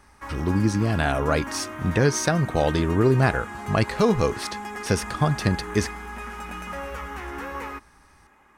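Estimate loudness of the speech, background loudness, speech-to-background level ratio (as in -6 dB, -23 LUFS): -23.5 LUFS, -34.5 LUFS, 11.0 dB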